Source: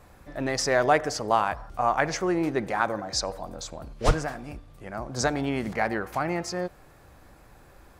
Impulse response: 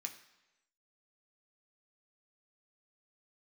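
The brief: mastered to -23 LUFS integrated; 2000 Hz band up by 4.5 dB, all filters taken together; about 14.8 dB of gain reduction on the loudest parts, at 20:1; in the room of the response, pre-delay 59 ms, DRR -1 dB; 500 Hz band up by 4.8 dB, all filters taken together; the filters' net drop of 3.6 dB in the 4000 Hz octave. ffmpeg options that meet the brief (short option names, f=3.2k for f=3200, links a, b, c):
-filter_complex "[0:a]equalizer=f=500:t=o:g=6,equalizer=f=2k:t=o:g=6.5,equalizer=f=4k:t=o:g=-6.5,acompressor=threshold=-26dB:ratio=20,asplit=2[a][b];[1:a]atrim=start_sample=2205,adelay=59[c];[b][c]afir=irnorm=-1:irlink=0,volume=3.5dB[d];[a][d]amix=inputs=2:normalize=0,volume=7dB"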